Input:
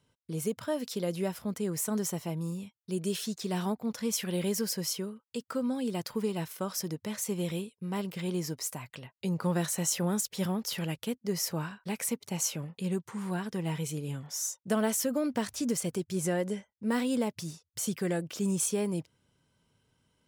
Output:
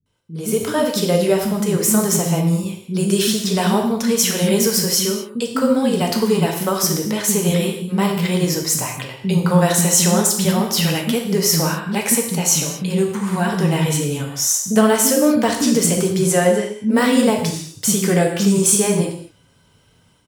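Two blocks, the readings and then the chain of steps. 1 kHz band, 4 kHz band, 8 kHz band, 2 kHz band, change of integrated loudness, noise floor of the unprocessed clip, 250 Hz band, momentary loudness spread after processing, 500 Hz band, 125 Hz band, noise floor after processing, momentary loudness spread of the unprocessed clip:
+16.5 dB, +16.5 dB, +16.5 dB, +16.5 dB, +15.5 dB, -83 dBFS, +14.5 dB, 7 LU, +15.5 dB, +15.0 dB, -55 dBFS, 7 LU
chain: bands offset in time lows, highs 60 ms, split 290 Hz; non-linear reverb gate 0.27 s falling, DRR 1.5 dB; AGC gain up to 14 dB; gain +1 dB

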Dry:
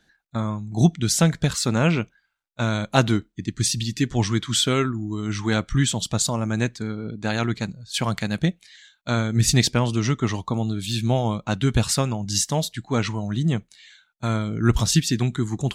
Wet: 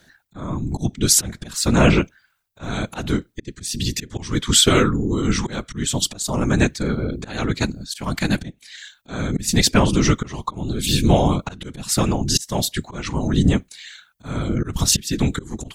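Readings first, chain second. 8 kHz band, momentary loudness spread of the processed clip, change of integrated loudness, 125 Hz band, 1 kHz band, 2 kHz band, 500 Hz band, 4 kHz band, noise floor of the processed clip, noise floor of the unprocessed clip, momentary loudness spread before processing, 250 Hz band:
+4.5 dB, 15 LU, +2.5 dB, -0.5 dB, +2.0 dB, +2.0 dB, +3.0 dB, +4.0 dB, -61 dBFS, -68 dBFS, 8 LU, +2.5 dB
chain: high shelf 11000 Hz +10.5 dB; in parallel at -2 dB: compressor, threshold -29 dBFS, peak gain reduction 17.5 dB; on the sum: auto swell 0.346 s; whisperiser; gain +4 dB

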